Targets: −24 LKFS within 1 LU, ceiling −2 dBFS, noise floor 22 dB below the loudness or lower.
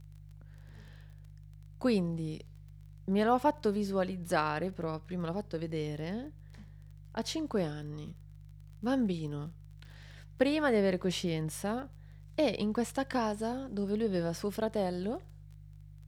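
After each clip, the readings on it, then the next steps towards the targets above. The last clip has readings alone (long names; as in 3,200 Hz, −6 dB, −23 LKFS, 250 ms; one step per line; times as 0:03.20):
crackle rate 24 per second; mains hum 50 Hz; hum harmonics up to 150 Hz; level of the hum −49 dBFS; integrated loudness −33.0 LKFS; sample peak −14.0 dBFS; target loudness −24.0 LKFS
→ click removal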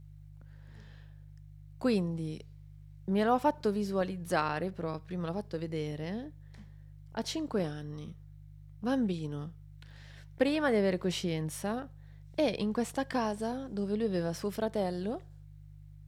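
crackle rate 0.062 per second; mains hum 50 Hz; hum harmonics up to 150 Hz; level of the hum −49 dBFS
→ hum removal 50 Hz, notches 3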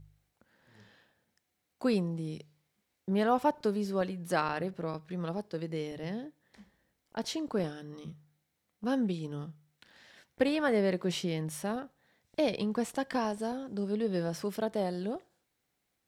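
mains hum none found; integrated loudness −33.0 LKFS; sample peak −14.0 dBFS; target loudness −24.0 LKFS
→ level +9 dB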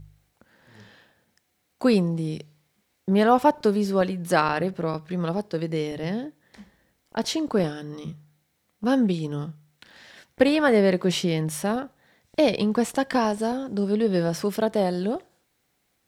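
integrated loudness −24.0 LKFS; sample peak −5.0 dBFS; background noise floor −72 dBFS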